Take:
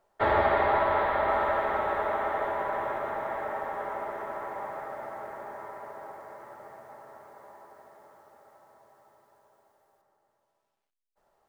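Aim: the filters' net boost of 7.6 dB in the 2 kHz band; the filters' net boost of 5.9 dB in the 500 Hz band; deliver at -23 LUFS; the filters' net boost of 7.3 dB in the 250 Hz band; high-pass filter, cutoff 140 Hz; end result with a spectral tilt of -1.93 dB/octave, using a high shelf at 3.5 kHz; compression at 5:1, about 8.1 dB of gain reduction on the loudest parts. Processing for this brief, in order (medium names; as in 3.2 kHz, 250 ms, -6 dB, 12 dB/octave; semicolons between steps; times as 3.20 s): high-pass 140 Hz; peaking EQ 250 Hz +8 dB; peaking EQ 500 Hz +5.5 dB; peaking EQ 2 kHz +6.5 dB; treble shelf 3.5 kHz +8.5 dB; compression 5:1, threshold -24 dBFS; trim +6.5 dB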